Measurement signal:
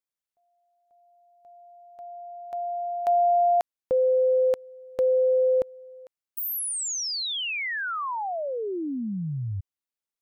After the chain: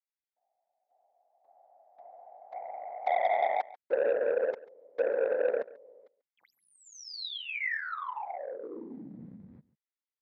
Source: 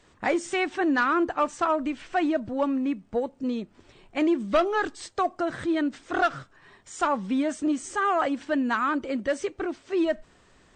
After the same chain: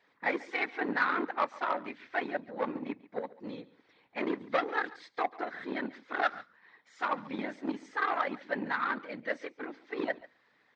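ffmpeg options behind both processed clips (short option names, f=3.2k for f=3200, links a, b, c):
-filter_complex "[0:a]afftfilt=real='hypot(re,im)*cos(2*PI*random(0))':imag='hypot(re,im)*sin(2*PI*random(1))':win_size=512:overlap=0.75,aeval=exprs='0.178*(cos(1*acos(clip(val(0)/0.178,-1,1)))-cos(1*PI/2))+0.00282*(cos(2*acos(clip(val(0)/0.178,-1,1)))-cos(2*PI/2))+0.01*(cos(7*acos(clip(val(0)/0.178,-1,1)))-cos(7*PI/2))':c=same,highpass=330,equalizer=f=370:t=q:w=4:g=-8,equalizer=f=640:t=q:w=4:g=-6,equalizer=f=1.2k:t=q:w=4:g=-3,equalizer=f=2k:t=q:w=4:g=6,equalizer=f=2.9k:t=q:w=4:g=-7,lowpass=f=4.3k:w=0.5412,lowpass=f=4.3k:w=1.3066,asplit=2[a][b];[b]aecho=0:1:140:0.106[c];[a][c]amix=inputs=2:normalize=0,volume=3.5dB"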